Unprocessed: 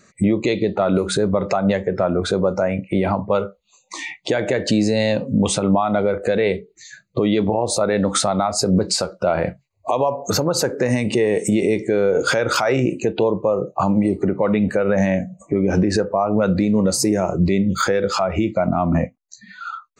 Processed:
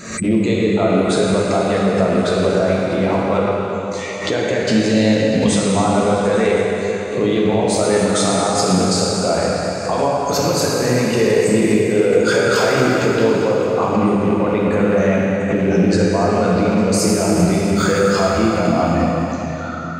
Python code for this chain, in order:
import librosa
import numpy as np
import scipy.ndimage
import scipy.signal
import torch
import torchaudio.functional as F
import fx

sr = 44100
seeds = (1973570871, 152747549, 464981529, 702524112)

y = fx.rattle_buzz(x, sr, strikes_db=-24.0, level_db=-26.0)
y = fx.echo_stepped(y, sr, ms=214, hz=1400.0, octaves=0.7, feedback_pct=70, wet_db=-7.5)
y = fx.rev_plate(y, sr, seeds[0], rt60_s=3.9, hf_ratio=0.75, predelay_ms=0, drr_db=-4.5)
y = fx.pre_swell(y, sr, db_per_s=81.0)
y = y * 10.0 ** (-3.0 / 20.0)